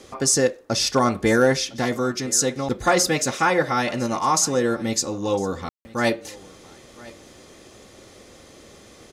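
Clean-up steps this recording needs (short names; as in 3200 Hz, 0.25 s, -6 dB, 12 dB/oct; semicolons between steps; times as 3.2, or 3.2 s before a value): clip repair -8.5 dBFS; room tone fill 5.69–5.85; inverse comb 1.006 s -21.5 dB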